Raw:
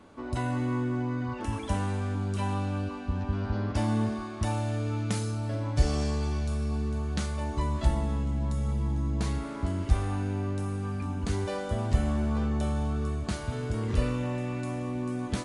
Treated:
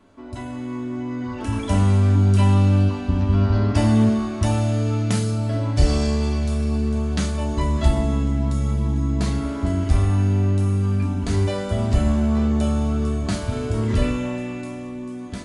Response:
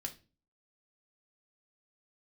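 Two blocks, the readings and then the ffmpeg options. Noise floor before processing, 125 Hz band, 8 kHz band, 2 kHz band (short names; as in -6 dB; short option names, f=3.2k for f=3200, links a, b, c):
-37 dBFS, +10.0 dB, +7.5 dB, +5.0 dB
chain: -filter_complex "[0:a]dynaudnorm=f=210:g=13:m=11.5dB[a];[1:a]atrim=start_sample=2205[b];[a][b]afir=irnorm=-1:irlink=0"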